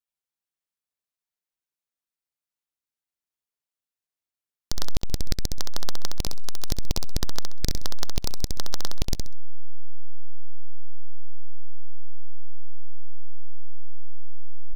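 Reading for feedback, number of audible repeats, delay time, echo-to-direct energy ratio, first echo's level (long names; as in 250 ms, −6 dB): 23%, 3, 65 ms, −5.0 dB, −5.0 dB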